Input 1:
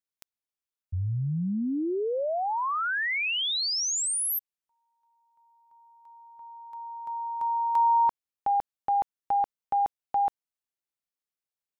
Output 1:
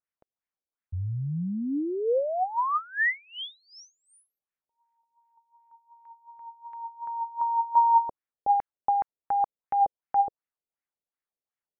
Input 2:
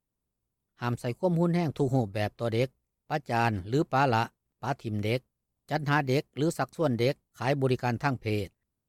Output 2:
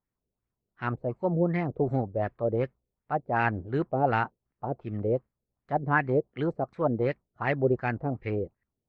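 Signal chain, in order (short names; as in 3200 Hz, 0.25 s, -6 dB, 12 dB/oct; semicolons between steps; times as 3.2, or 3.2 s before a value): LFO low-pass sine 2.7 Hz 470–2100 Hz; gain -2 dB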